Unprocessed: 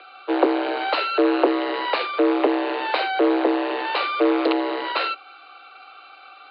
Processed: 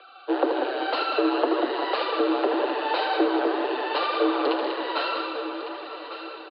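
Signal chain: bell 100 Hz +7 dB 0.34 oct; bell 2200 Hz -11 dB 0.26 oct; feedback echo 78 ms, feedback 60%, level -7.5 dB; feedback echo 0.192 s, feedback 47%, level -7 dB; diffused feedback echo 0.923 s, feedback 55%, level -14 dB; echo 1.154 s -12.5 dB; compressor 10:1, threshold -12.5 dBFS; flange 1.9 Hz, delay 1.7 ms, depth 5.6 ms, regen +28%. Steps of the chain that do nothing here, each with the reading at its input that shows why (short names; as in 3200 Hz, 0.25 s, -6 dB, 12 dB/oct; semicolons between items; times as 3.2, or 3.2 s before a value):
bell 100 Hz: input band starts at 250 Hz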